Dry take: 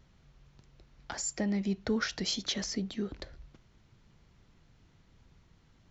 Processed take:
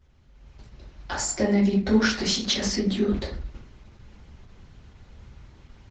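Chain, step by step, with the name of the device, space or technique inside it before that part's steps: speakerphone in a meeting room (reverberation RT60 0.50 s, pre-delay 3 ms, DRR -7 dB; speakerphone echo 210 ms, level -25 dB; level rider gain up to 11.5 dB; trim -6.5 dB; Opus 12 kbps 48 kHz)

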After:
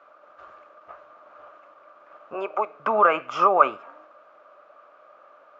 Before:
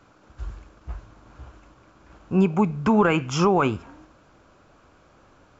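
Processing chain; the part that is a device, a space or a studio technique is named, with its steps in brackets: 2.34–2.80 s: high-pass 300 Hz 24 dB/octave; tin-can telephone (band-pass 650–2500 Hz; small resonant body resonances 600/1200 Hz, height 15 dB, ringing for 35 ms)

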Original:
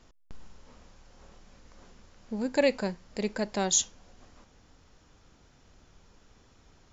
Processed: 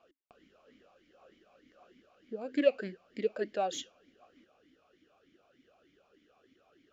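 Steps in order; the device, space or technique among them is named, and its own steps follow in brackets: talk box (valve stage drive 17 dB, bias 0.25; talking filter a-i 3.3 Hz); trim +8 dB

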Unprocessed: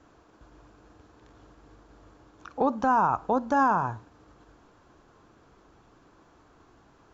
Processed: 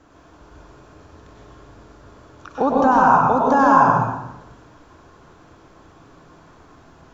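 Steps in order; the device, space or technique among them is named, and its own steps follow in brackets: bathroom (reverberation RT60 0.95 s, pre-delay 94 ms, DRR -3.5 dB); trim +5 dB

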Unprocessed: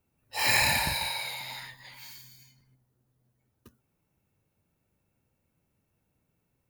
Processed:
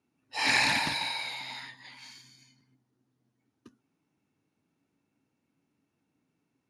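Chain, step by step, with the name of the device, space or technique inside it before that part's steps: full-range speaker at full volume (loudspeaker Doppler distortion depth 0.32 ms; cabinet simulation 170–8900 Hz, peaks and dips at 280 Hz +10 dB, 550 Hz -7 dB, 7.9 kHz -7 dB)

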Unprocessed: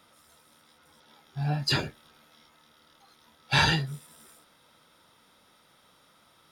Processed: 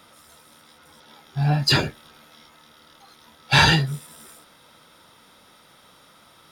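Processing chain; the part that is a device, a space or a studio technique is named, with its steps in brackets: parallel distortion (in parallel at -8 dB: hard clipper -24.5 dBFS, distortion -8 dB); on the sum: trim +5.5 dB

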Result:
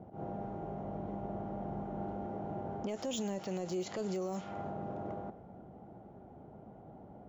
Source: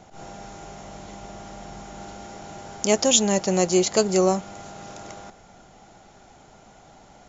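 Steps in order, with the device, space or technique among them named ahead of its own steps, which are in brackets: level-controlled noise filter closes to 470 Hz, open at -15 dBFS; broadcast voice chain (high-pass 76 Hz 12 dB/octave; de-esser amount 85%; compression 3:1, threshold -34 dBFS, peak gain reduction 13.5 dB; peaking EQ 3.1 kHz +3.5 dB 0.3 oct; peak limiter -31 dBFS, peak gain reduction 10.5 dB); trim +2.5 dB

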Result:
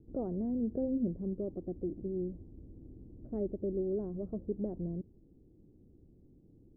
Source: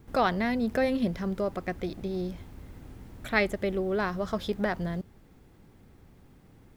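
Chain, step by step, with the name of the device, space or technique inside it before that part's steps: under water (low-pass 480 Hz 24 dB/octave; peaking EQ 320 Hz +7 dB 0.43 oct); trim -6 dB

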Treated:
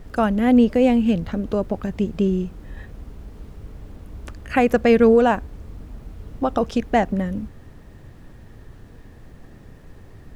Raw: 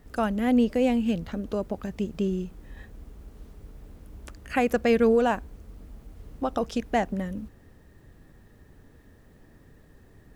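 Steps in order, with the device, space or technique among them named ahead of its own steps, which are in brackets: car interior (peaking EQ 110 Hz +4.5 dB 0.77 oct; treble shelf 4.2 kHz -7 dB; brown noise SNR 22 dB); trim +6.5 dB

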